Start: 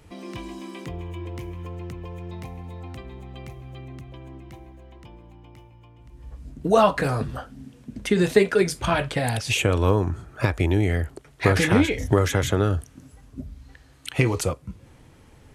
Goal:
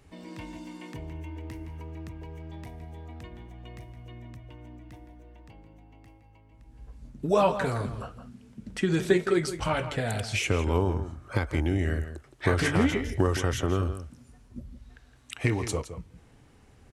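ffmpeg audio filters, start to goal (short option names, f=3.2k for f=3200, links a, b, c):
-filter_complex "[0:a]asplit=2[a][b];[b]adelay=151.6,volume=-11dB,highshelf=f=4k:g=-3.41[c];[a][c]amix=inputs=2:normalize=0,asetrate=40517,aresample=44100,volume=-5.5dB"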